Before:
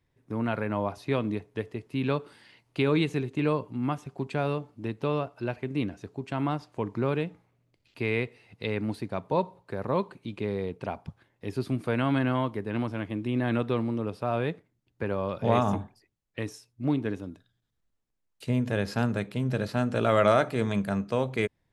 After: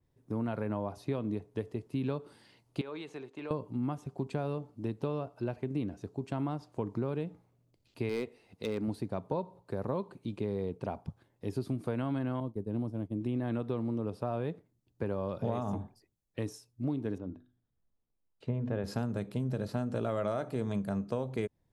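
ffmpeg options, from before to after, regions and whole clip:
-filter_complex "[0:a]asettb=1/sr,asplit=3[s0][s1][s2];[s0]atrim=end=2.814[s3];[s1]atrim=start=2.81:end=3.51,asetpts=PTS-STARTPTS,afade=t=in:d=0.004:c=qsin,afade=t=out:st=0.696:d=0.004:c=qsin,highpass=760,aemphasis=mode=reproduction:type=bsi,acompressor=threshold=0.02:ratio=4:attack=3.2:release=140:knee=1:detection=peak[s4];[s2]atrim=start=3.506[s5];[s3][s4]acrossfade=d=0.004:c1=hsin:c2=qsin[s6];[s6][s5]acrossfade=d=0.004:c1=qsin:c2=hsin,asettb=1/sr,asplit=3[s7][s8][s9];[s7]atrim=end=8.094[s10];[s8]atrim=start=8.09:end=8.88,asetpts=PTS-STARTPTS,afade=t=in:d=0.004:c=qsin,afade=t=out:st=0.786:d=0.004:c=qsin,equalizer=f=120:t=o:w=0.43:g=-13,volume=13.3,asoftclip=hard,volume=0.075[s11];[s9]atrim=start=8.876[s12];[s10][s11]acrossfade=d=0.004:c1=hsin:c2=qsin[s13];[s13][s12]acrossfade=d=0.004:c1=qsin:c2=hsin,asettb=1/sr,asplit=3[s14][s15][s16];[s14]atrim=end=12.404[s17];[s15]atrim=start=12.4:end=13.21,asetpts=PTS-STARTPTS,afade=t=in:d=0.004:c=qsin,afade=t=out:st=0.806:d=0.004:c=qsin,agate=range=0.0224:threshold=0.0224:ratio=3:release=100:detection=peak,equalizer=f=1900:w=0.56:g=-14.5[s18];[s16]atrim=start=13.206[s19];[s17][s18]acrossfade=d=0.004:c1=hsin:c2=qsin[s20];[s20][s19]acrossfade=d=0.004:c1=qsin:c2=hsin,asettb=1/sr,asplit=3[s21][s22][s23];[s21]atrim=end=17.184[s24];[s22]atrim=start=17.18:end=18.84,asetpts=PTS-STARTPTS,afade=t=in:d=0.004:c=qsin,afade=t=out:st=1.656:d=0.004:c=qsin,lowpass=2300,bandreject=f=50:t=h:w=6,bandreject=f=100:t=h:w=6,bandreject=f=150:t=h:w=6,bandreject=f=200:t=h:w=6,bandreject=f=250:t=h:w=6,bandreject=f=300:t=h:w=6,bandreject=f=350:t=h:w=6[s25];[s23]atrim=start=18.836[s26];[s24][s25]acrossfade=d=0.004:c1=hsin:c2=qsin[s27];[s27][s26]acrossfade=d=0.004:c1=qsin:c2=hsin,equalizer=f=2100:w=0.75:g=-9.5,acompressor=threshold=0.0355:ratio=6,adynamicequalizer=threshold=0.00126:dfrequency=3000:dqfactor=0.7:tfrequency=3000:tqfactor=0.7:attack=5:release=100:ratio=0.375:range=1.5:mode=cutabove:tftype=highshelf"

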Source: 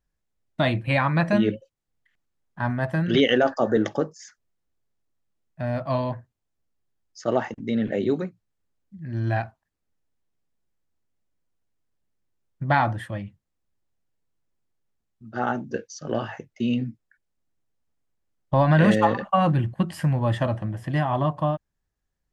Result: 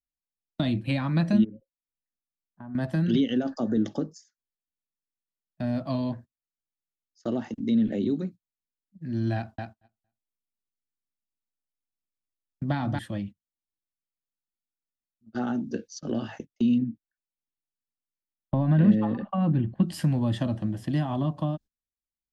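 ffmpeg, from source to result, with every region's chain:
-filter_complex "[0:a]asettb=1/sr,asplit=3[s0][s1][s2];[s0]atrim=end=1.444[s3];[s1]atrim=start=1.44:end=2.75,asetpts=PTS-STARTPTS,afade=t=in:d=0.004:c=qsin,afade=t=out:st=1.306:d=0.004:c=qsin,lowpass=f=1400:w=0.5412,lowpass=f=1400:w=1.3066,acompressor=threshold=0.0158:ratio=6:attack=3.2:release=140:knee=1:detection=peak[s4];[s2]atrim=start=2.746[s5];[s3][s4]acrossfade=d=0.004:c1=hsin:c2=qsin[s6];[s6][s5]acrossfade=d=0.004:c1=qsin:c2=hsin,asettb=1/sr,asplit=3[s7][s8][s9];[s7]atrim=end=9.354[s10];[s8]atrim=start=9.35:end=12.99,asetpts=PTS-STARTPTS,afade=t=in:d=0.004:c=qsin,afade=t=out:st=3.636:d=0.004:c=qsin,bandreject=f=4200:w=20,aecho=1:1:230|460|690:0.501|0.12|0.0289,atrim=end_sample=160524[s11];[s9]atrim=start=12.986[s12];[s10][s11]acrossfade=d=0.004:c1=hsin:c2=qsin[s13];[s13][s12]acrossfade=d=0.004:c1=qsin:c2=hsin,asettb=1/sr,asplit=3[s14][s15][s16];[s14]atrim=end=16.784[s17];[s15]atrim=start=16.78:end=19.83,asetpts=PTS-STARTPTS,afade=t=in:d=0.004:c=qsin,afade=t=out:st=3.046:d=0.004:c=qsin,lowpass=2200,bandreject=f=1400:w=26[s18];[s16]atrim=start=19.826[s19];[s17][s18]acrossfade=d=0.004:c1=hsin:c2=qsin[s20];[s20][s19]acrossfade=d=0.004:c1=qsin:c2=hsin,agate=range=0.0794:threshold=0.0112:ratio=16:detection=peak,equalizer=f=125:t=o:w=1:g=-6,equalizer=f=250:t=o:w=1:g=7,equalizer=f=500:t=o:w=1:g=-4,equalizer=f=1000:t=o:w=1:g=-6,equalizer=f=2000:t=o:w=1:g=-7,equalizer=f=4000:t=o:w=1:g=5,acrossover=split=230[s21][s22];[s22]acompressor=threshold=0.0316:ratio=10[s23];[s21][s23]amix=inputs=2:normalize=0,volume=1.12"

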